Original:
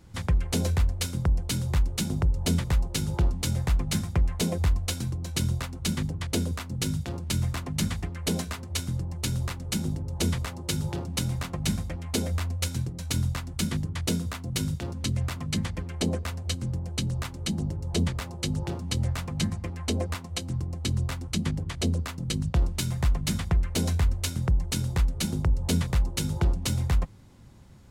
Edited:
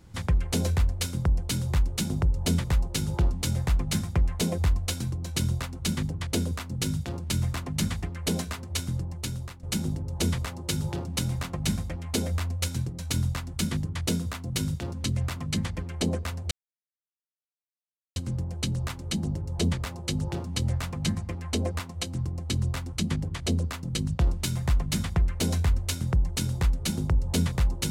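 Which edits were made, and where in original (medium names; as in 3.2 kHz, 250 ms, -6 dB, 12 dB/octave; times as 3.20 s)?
8.99–9.63 s: fade out, to -13.5 dB
16.51 s: insert silence 1.65 s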